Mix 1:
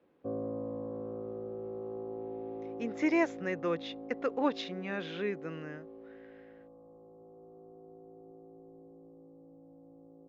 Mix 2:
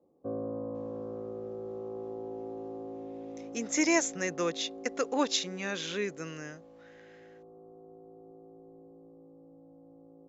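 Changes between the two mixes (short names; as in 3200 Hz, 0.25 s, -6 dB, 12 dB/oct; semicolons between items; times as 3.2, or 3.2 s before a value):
speech: entry +0.75 s; master: remove air absorption 370 m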